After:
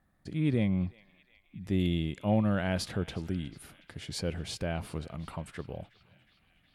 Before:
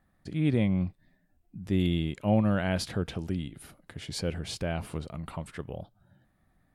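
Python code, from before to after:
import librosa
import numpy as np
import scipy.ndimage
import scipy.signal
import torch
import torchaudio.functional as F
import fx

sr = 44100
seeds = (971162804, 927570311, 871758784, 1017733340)

y = fx.echo_banded(x, sr, ms=364, feedback_pct=82, hz=2600.0, wet_db=-19)
y = fx.cheby_harmonics(y, sr, harmonics=(5,), levels_db=(-33,), full_scale_db=-12.5)
y = y * librosa.db_to_amplitude(-2.5)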